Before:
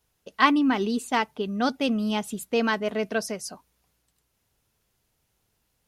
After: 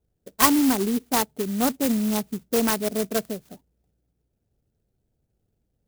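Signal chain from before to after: Wiener smoothing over 41 samples; in parallel at -6 dB: soft clip -20.5 dBFS, distortion -11 dB; on the sum: clock jitter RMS 0.12 ms

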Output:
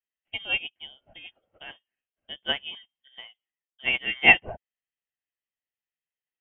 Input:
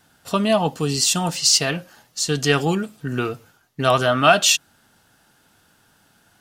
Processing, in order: HPF 220 Hz 12 dB/oct; inverted band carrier 3400 Hz; upward expander 2.5:1, over -36 dBFS

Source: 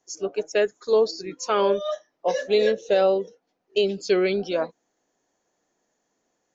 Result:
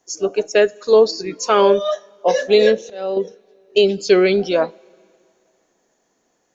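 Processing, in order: 2.6–3.17 auto swell 0.601 s; two-slope reverb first 0.26 s, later 2.5 s, from -18 dB, DRR 19.5 dB; gain +7.5 dB

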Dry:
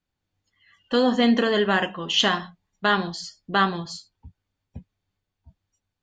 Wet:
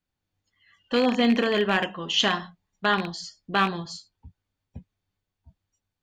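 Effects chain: rattling part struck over -27 dBFS, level -18 dBFS; gain -2 dB

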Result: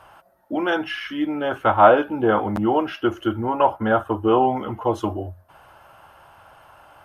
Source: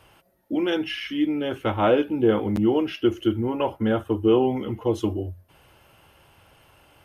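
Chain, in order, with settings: band shelf 990 Hz +12 dB; gain -1 dB

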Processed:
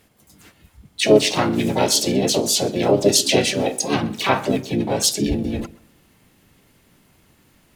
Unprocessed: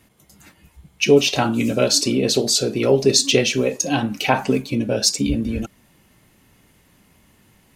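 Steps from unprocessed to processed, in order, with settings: darkening echo 0.129 s, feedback 26%, low-pass 3800 Hz, level -20 dB; harmoniser -5 st -7 dB, +4 st -7 dB, +7 st -4 dB; gain -3 dB

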